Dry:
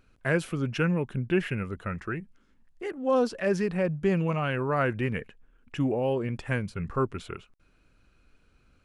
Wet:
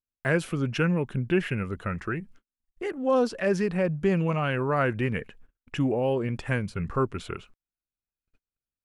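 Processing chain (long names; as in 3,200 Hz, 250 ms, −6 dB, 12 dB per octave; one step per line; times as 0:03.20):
in parallel at −2.5 dB: downward compressor, threshold −37 dBFS, peak gain reduction 16.5 dB
on the sum: noise gate −49 dBFS, range −42 dB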